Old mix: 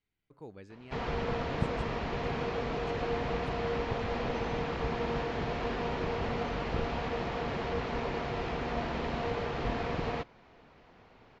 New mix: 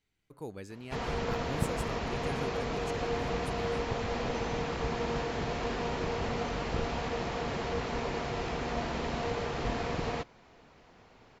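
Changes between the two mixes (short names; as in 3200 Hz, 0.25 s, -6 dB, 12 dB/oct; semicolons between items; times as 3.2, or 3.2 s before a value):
speech +5.5 dB; master: remove LPF 4000 Hz 12 dB/oct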